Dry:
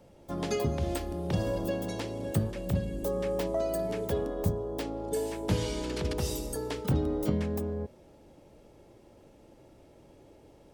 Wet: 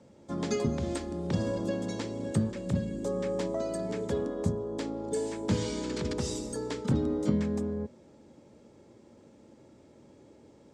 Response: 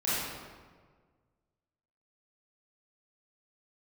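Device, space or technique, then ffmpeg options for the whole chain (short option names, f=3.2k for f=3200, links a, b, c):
car door speaker: -af "highpass=90,equalizer=f=230:t=q:w=4:g=7,equalizer=f=710:t=q:w=4:g=-6,equalizer=f=2.8k:t=q:w=4:g=-5,equalizer=f=7.4k:t=q:w=4:g=5,lowpass=f=8.1k:w=0.5412,lowpass=f=8.1k:w=1.3066"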